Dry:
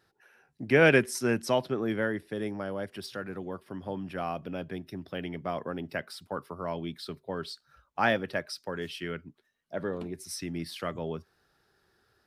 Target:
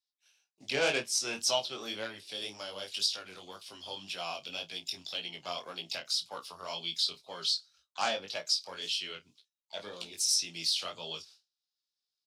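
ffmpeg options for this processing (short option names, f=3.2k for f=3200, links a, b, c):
-filter_complex "[0:a]agate=range=-33dB:threshold=-50dB:ratio=3:detection=peak,acrossover=split=590 7300:gain=0.178 1 0.0708[a][b][c];[a][b][c]amix=inputs=3:normalize=0,acrossover=split=1500[d][e];[e]acompressor=threshold=-49dB:ratio=6[f];[d][f]amix=inputs=2:normalize=0,asplit=2[g][h];[h]asetrate=58866,aresample=44100,atempo=0.749154,volume=-17dB[i];[g][i]amix=inputs=2:normalize=0,aeval=exprs='0.15*(cos(1*acos(clip(val(0)/0.15,-1,1)))-cos(1*PI/2))+0.00237*(cos(7*acos(clip(val(0)/0.15,-1,1)))-cos(7*PI/2))':c=same,aexciter=amount=10:drive=9:freq=2.8k,flanger=delay=17:depth=5.7:speed=1.9,asplit=2[j][k];[k]adelay=30,volume=-13.5dB[l];[j][l]amix=inputs=2:normalize=0"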